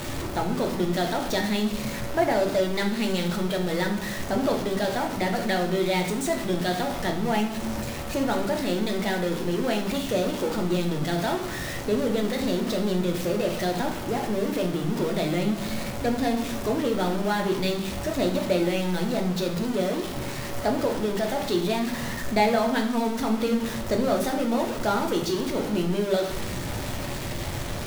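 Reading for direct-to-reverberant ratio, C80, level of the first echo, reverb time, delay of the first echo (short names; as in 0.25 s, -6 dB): 2.0 dB, 11.0 dB, none, 0.80 s, none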